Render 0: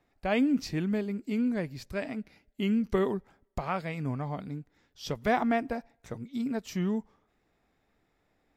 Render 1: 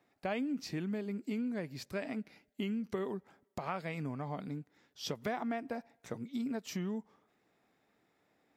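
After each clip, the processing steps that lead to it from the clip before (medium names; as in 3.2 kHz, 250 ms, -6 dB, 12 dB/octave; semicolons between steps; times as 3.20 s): compression 6:1, threshold -33 dBFS, peak gain reduction 12 dB; high-pass 150 Hz 12 dB/octave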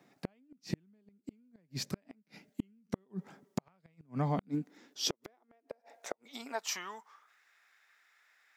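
high-pass sweep 160 Hz -> 1.6 kHz, 4.15–7.47 s; inverted gate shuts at -27 dBFS, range -40 dB; peaking EQ 6 kHz +4.5 dB 0.71 oct; trim +6 dB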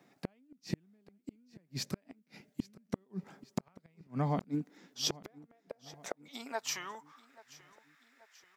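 feedback delay 833 ms, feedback 53%, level -20.5 dB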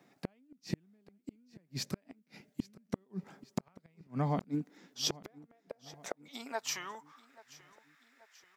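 no audible change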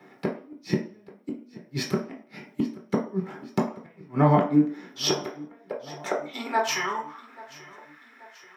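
reverberation RT60 0.45 s, pre-delay 3 ms, DRR -2 dB; trim +2 dB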